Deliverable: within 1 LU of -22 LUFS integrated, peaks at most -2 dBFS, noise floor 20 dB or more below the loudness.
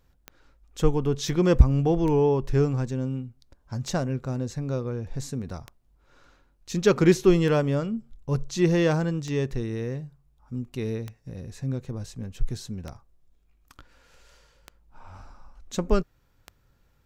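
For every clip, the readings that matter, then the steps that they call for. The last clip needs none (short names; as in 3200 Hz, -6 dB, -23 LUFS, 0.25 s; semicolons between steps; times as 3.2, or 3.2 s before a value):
clicks 10; loudness -26.0 LUFS; peak -4.0 dBFS; loudness target -22.0 LUFS
-> de-click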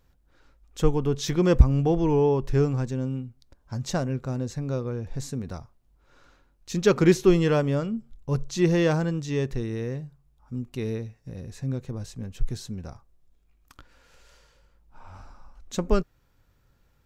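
clicks 0; loudness -26.0 LUFS; peak -4.0 dBFS; loudness target -22.0 LUFS
-> gain +4 dB; limiter -2 dBFS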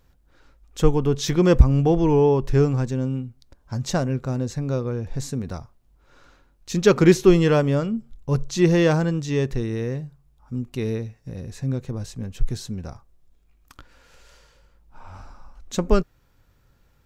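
loudness -22.0 LUFS; peak -2.0 dBFS; noise floor -61 dBFS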